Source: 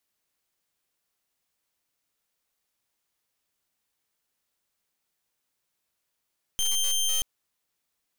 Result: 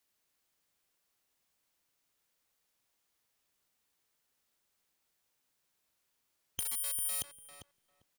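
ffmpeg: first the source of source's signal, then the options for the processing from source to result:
-f lavfi -i "aevalsrc='0.0562*(2*lt(mod(3150*t,1),0.17)-1)':d=0.63:s=44100"
-filter_complex "[0:a]afftfilt=real='re*lt(hypot(re,im),0.2)':imag='im*lt(hypot(re,im),0.2)':win_size=1024:overlap=0.75,alimiter=level_in=1.12:limit=0.0631:level=0:latency=1:release=188,volume=0.891,asplit=2[s0][s1];[s1]adelay=398,lowpass=f=1800:p=1,volume=0.473,asplit=2[s2][s3];[s3]adelay=398,lowpass=f=1800:p=1,volume=0.15,asplit=2[s4][s5];[s5]adelay=398,lowpass=f=1800:p=1,volume=0.15[s6];[s0][s2][s4][s6]amix=inputs=4:normalize=0"

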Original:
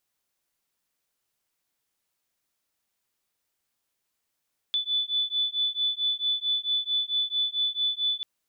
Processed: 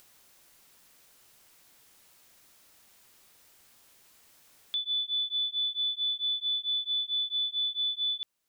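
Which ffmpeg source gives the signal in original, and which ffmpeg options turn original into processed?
-f lavfi -i "aevalsrc='0.0422*(sin(2*PI*3480*t)+sin(2*PI*3484.5*t))':d=3.49:s=44100"
-af "acompressor=mode=upward:threshold=0.00708:ratio=2.5,alimiter=level_in=1.19:limit=0.0631:level=0:latency=1:release=349,volume=0.841"

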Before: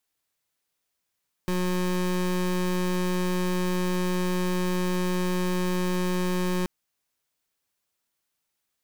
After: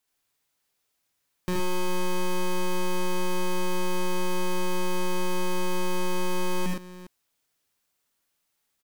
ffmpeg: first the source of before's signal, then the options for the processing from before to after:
-f lavfi -i "aevalsrc='0.0531*(2*lt(mod(181*t,1),0.26)-1)':d=5.18:s=44100"
-filter_complex "[0:a]asplit=2[s0][s1];[s1]aecho=0:1:52|75|82|103|118|407:0.335|0.668|0.473|0.355|0.531|0.141[s2];[s0][s2]amix=inputs=2:normalize=0,acompressor=threshold=0.0501:ratio=1.5"

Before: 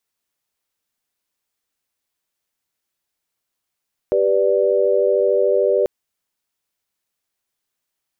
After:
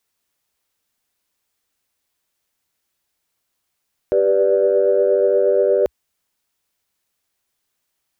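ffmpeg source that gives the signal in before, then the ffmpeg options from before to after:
-f lavfi -i "aevalsrc='0.126*(sin(2*PI*392*t)+sin(2*PI*493.88*t)+sin(2*PI*587.33*t))':d=1.74:s=44100"
-af "equalizer=f=64:w=1.8:g=4,acontrast=26,alimiter=limit=0.335:level=0:latency=1:release=19"

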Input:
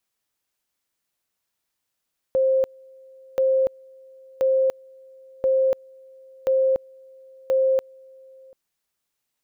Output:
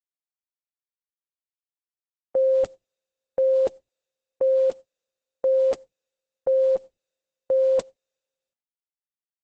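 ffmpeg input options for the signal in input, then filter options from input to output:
-f lavfi -i "aevalsrc='pow(10,(-16-28.5*gte(mod(t,1.03),0.29))/20)*sin(2*PI*528*t)':d=6.18:s=44100"
-af "agate=range=0.00562:threshold=0.0224:ratio=16:detection=peak" -ar 48000 -c:a libopus -b:a 10k

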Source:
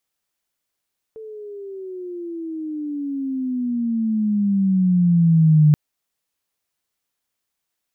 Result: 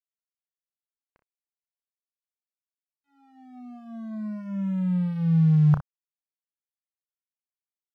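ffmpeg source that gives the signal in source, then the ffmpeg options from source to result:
-f lavfi -i "aevalsrc='pow(10,(-9+24*(t/4.58-1))/20)*sin(2*PI*445*4.58/(-19*log(2)/12)*(exp(-19*log(2)/12*t/4.58)-1))':d=4.58:s=44100"
-af "firequalizer=gain_entry='entry(100,0);entry(310,-21);entry(530,-3);entry(1000,6);entry(1500,5);entry(2200,-23)':delay=0.05:min_phase=1,aeval=exprs='sgn(val(0))*max(abs(val(0))-0.00841,0)':c=same,aecho=1:1:32|61:0.355|0.224"

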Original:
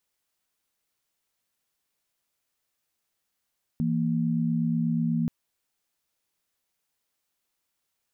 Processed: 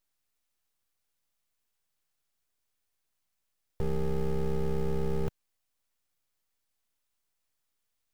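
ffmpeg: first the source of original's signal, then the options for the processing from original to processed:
-f lavfi -i "aevalsrc='0.0531*(sin(2*PI*164.81*t)+sin(2*PI*233.08*t))':d=1.48:s=44100"
-filter_complex "[0:a]acrossover=split=150[s0][s1];[s0]acrusher=bits=4:mode=log:mix=0:aa=0.000001[s2];[s1]aeval=exprs='abs(val(0))':c=same[s3];[s2][s3]amix=inputs=2:normalize=0"

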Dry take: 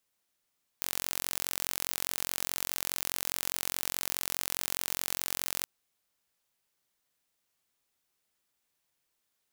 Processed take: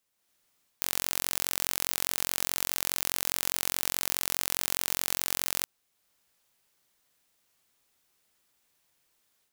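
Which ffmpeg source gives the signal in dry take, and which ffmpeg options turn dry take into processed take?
-f lavfi -i "aevalsrc='0.562*eq(mod(n,984),0)':d=4.84:s=44100"
-af "dynaudnorm=f=160:g=3:m=2.37"

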